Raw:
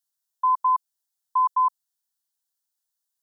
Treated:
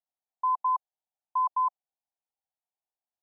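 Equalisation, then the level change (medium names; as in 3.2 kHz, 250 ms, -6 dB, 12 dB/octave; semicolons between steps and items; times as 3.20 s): resonant low-pass 750 Hz, resonance Q 4.9; -6.5 dB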